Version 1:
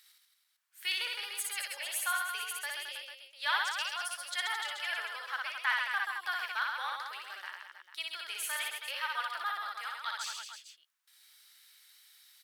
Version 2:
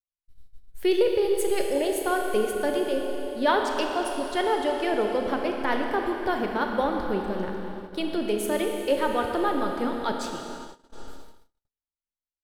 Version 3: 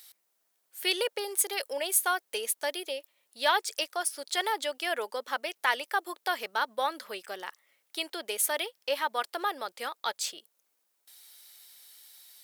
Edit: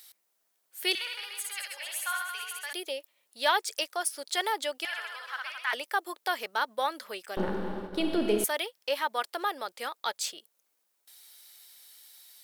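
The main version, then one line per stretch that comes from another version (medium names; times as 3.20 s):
3
0.95–2.73 s: from 1
4.85–5.73 s: from 1
7.37–8.44 s: from 2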